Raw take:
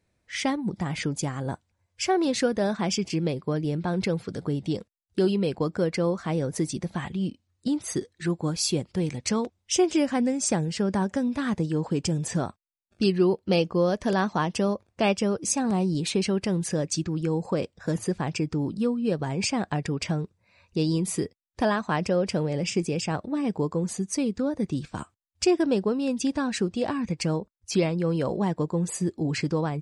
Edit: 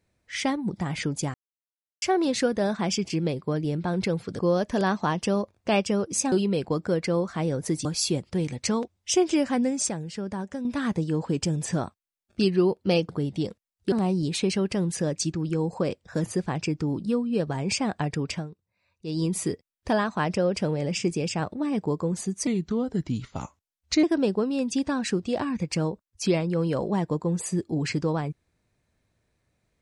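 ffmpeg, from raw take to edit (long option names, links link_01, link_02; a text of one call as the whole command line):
ffmpeg -i in.wav -filter_complex "[0:a]asplit=14[link_01][link_02][link_03][link_04][link_05][link_06][link_07][link_08][link_09][link_10][link_11][link_12][link_13][link_14];[link_01]atrim=end=1.34,asetpts=PTS-STARTPTS,afade=type=out:start_time=1.336:duration=0.004:curve=hsin[link_15];[link_02]atrim=start=1.34:end=2.02,asetpts=PTS-STARTPTS,volume=0[link_16];[link_03]atrim=start=2.02:end=4.392,asetpts=PTS-STARTPTS,afade=type=in:duration=0.004:curve=hsin[link_17];[link_04]atrim=start=13.708:end=15.642[link_18];[link_05]atrim=start=5.218:end=6.752[link_19];[link_06]atrim=start=8.468:end=10.512[link_20];[link_07]atrim=start=10.508:end=11.272,asetpts=PTS-STARTPTS,volume=-7dB[link_21];[link_08]atrim=start=11.268:end=13.712[link_22];[link_09]atrim=start=4.388:end=5.222[link_23];[link_10]atrim=start=15.638:end=20.21,asetpts=PTS-STARTPTS,afade=type=out:start_time=4.362:duration=0.21:silence=0.237137[link_24];[link_11]atrim=start=20.21:end=20.76,asetpts=PTS-STARTPTS,volume=-12.5dB[link_25];[link_12]atrim=start=20.76:end=24.194,asetpts=PTS-STARTPTS,afade=type=in:duration=0.21:silence=0.237137[link_26];[link_13]atrim=start=24.19:end=25.52,asetpts=PTS-STARTPTS,asetrate=37485,aresample=44100[link_27];[link_14]atrim=start=25.516[link_28];[link_15][link_16][link_17]concat=n=3:v=0:a=1[link_29];[link_29][link_18]acrossfade=duration=0.004:curve1=hsin:curve2=hsin[link_30];[link_30][link_19]acrossfade=duration=0.004:curve1=hsin:curve2=hsin[link_31];[link_31][link_20]acrossfade=duration=0.004:curve1=hsin:curve2=hsin[link_32];[link_32][link_21]acrossfade=duration=0.004:curve1=hsin:curve2=hsin[link_33];[link_33][link_22]acrossfade=duration=0.004:curve1=hsin:curve2=hsin[link_34];[link_34][link_23]acrossfade=duration=0.004:curve1=hsin:curve2=hsin[link_35];[link_24][link_25][link_26]concat=n=3:v=0:a=1[link_36];[link_35][link_36]acrossfade=duration=0.004:curve1=hsin:curve2=hsin[link_37];[link_37][link_27]acrossfade=duration=0.004:curve1=hsin:curve2=hsin[link_38];[link_38][link_28]acrossfade=duration=0.004:curve1=hsin:curve2=hsin" out.wav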